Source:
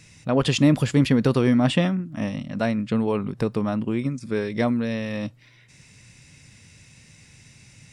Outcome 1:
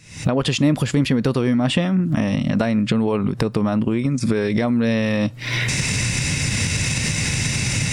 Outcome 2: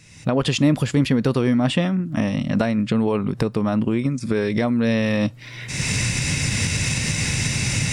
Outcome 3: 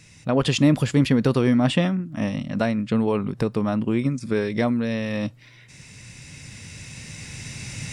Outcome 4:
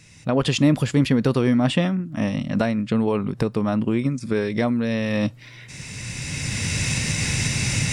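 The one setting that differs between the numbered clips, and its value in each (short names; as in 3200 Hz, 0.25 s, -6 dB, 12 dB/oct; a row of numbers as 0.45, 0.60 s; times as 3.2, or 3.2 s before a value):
recorder AGC, rising by: 91, 35, 5.1, 13 dB/s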